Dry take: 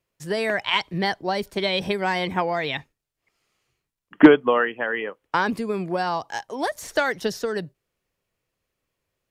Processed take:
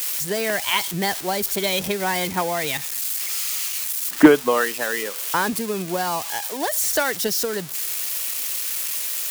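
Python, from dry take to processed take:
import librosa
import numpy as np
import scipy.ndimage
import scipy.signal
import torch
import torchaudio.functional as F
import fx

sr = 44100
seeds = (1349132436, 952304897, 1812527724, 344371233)

y = x + 0.5 * 10.0 ** (-17.5 / 20.0) * np.diff(np.sign(x), prepend=np.sign(x[:1]))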